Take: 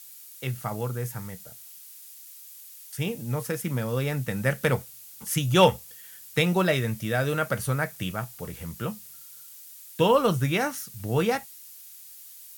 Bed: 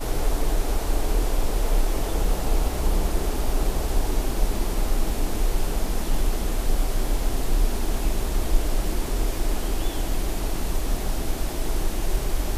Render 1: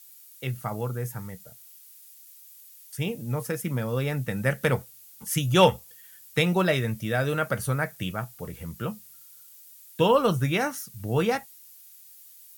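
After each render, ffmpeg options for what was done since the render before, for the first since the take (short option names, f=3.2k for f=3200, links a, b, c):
-af "afftdn=nr=6:nf=-47"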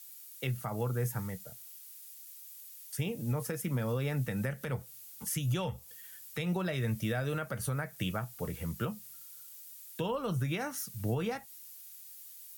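-filter_complex "[0:a]acrossover=split=150[a][b];[b]acompressor=threshold=-28dB:ratio=3[c];[a][c]amix=inputs=2:normalize=0,alimiter=limit=-24dB:level=0:latency=1:release=199"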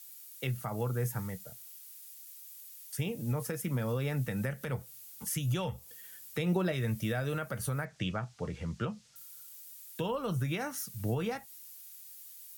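-filter_complex "[0:a]asettb=1/sr,asplit=3[a][b][c];[a]atrim=end=5.834[d];[b]atrim=start=5.83:end=6.72,asetpts=PTS-STARTPTS,afade=t=in:d=0.004:c=qsin,afade=t=out:st=0.886:d=0.004:c=qsin,equalizer=f=330:t=o:w=1.6:g=6[e];[c]atrim=start=6.716[f];[d][e]acrossfade=d=0.004:c1=hsin:c2=qsin[g];[g][f]acrossfade=d=0.004:c1=qsin:c2=hsin,asettb=1/sr,asplit=3[h][i][j];[h]atrim=end=7.854[k];[i]atrim=start=7.85:end=9.16,asetpts=PTS-STARTPTS,afade=t=in:d=0.004:c=qsin,afade=t=out:st=1.306:d=0.004:c=qsin,lowpass=f=6.5k:w=0.5412,lowpass=f=6.5k:w=1.3066[l];[j]atrim=start=9.156[m];[k][l]acrossfade=d=0.004:c1=hsin:c2=qsin[n];[n][m]acrossfade=d=0.004:c1=qsin:c2=hsin"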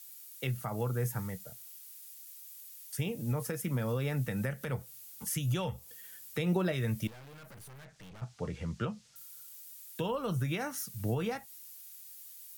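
-filter_complex "[0:a]asettb=1/sr,asplit=3[a][b][c];[a]atrim=end=7.074[d];[b]atrim=start=7.07:end=8.22,asetpts=PTS-STARTPTS,afade=t=in:d=0.004:c=qsin,afade=t=out:st=1.146:d=0.004:c=qsin,aeval=exprs='(tanh(316*val(0)+0.45)-tanh(0.45))/316':c=same[e];[c]atrim=start=8.216[f];[d][e]acrossfade=d=0.004:c1=hsin:c2=qsin[g];[g][f]acrossfade=d=0.004:c1=qsin:c2=hsin"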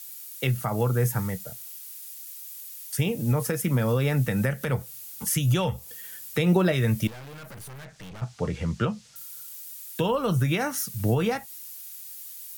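-af "volume=9dB"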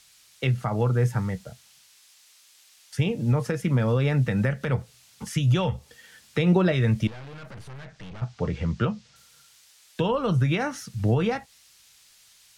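-af "lowpass=4.9k,lowshelf=f=130:g=3.5"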